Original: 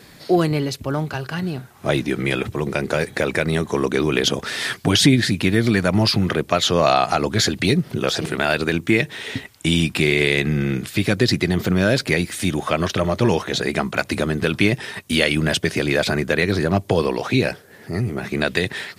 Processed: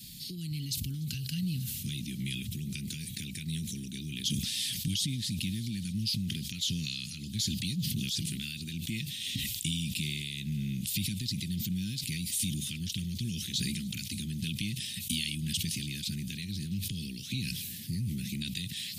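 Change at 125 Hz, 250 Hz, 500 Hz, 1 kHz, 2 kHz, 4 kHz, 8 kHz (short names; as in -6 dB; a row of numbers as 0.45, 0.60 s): -11.5 dB, -15.0 dB, -38.5 dB, under -40 dB, -21.0 dB, -9.5 dB, -5.5 dB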